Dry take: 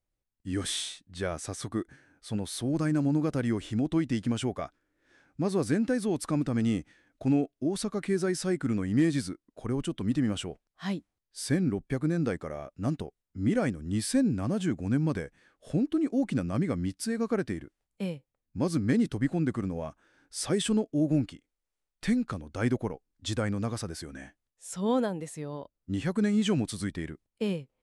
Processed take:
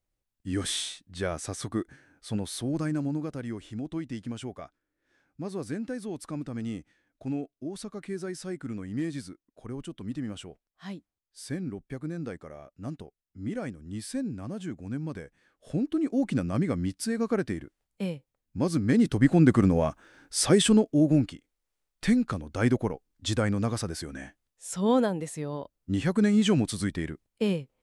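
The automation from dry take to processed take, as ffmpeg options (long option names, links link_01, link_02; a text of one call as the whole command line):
ffmpeg -i in.wav -af "volume=19.5dB,afade=type=out:start_time=2.32:duration=1.03:silence=0.375837,afade=type=in:start_time=15.12:duration=1.17:silence=0.375837,afade=type=in:start_time=18.89:duration=0.76:silence=0.334965,afade=type=out:start_time=19.65:duration=1.5:silence=0.421697" out.wav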